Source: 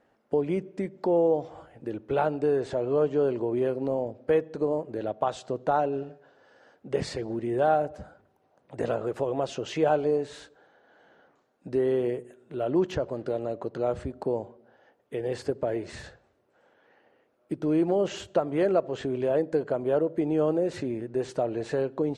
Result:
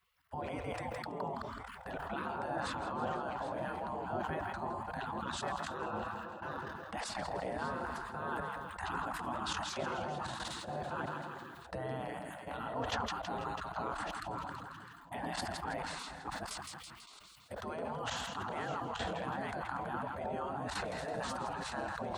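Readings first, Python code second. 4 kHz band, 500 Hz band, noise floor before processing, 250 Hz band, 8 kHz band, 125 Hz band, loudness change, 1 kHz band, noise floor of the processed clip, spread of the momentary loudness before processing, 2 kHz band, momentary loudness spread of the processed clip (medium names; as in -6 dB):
+1.0 dB, -16.0 dB, -68 dBFS, -14.0 dB, no reading, -8.5 dB, -11.5 dB, -3.5 dB, -53 dBFS, 11 LU, +1.0 dB, 6 LU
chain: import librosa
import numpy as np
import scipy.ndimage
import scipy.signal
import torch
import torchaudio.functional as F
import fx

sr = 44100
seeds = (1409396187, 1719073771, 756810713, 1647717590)

p1 = fx.reverse_delay(x, sr, ms=614, wet_db=-9)
p2 = fx.level_steps(p1, sr, step_db=18)
p3 = scipy.signal.sosfilt(scipy.signal.butter(2, 64.0, 'highpass', fs=sr, output='sos'), p2)
p4 = fx.peak_eq(p3, sr, hz=6400.0, db=-13.5, octaves=1.7)
p5 = p4 + fx.echo_thinned(p4, sr, ms=164, feedback_pct=56, hz=320.0, wet_db=-12, dry=0)
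p6 = fx.spec_gate(p5, sr, threshold_db=-20, keep='weak')
p7 = fx.peak_eq(p6, sr, hz=2300.0, db=-9.5, octaves=1.0)
p8 = fx.sustainer(p7, sr, db_per_s=24.0)
y = p8 * librosa.db_to_amplitude(17.0)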